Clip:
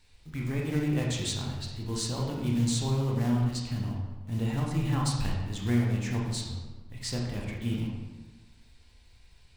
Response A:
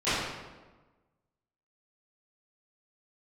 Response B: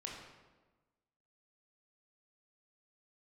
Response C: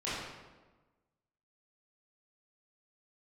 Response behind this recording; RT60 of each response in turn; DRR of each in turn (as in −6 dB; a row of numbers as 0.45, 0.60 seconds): B; 1.3, 1.3, 1.3 seconds; −19.0, −2.0, −11.5 decibels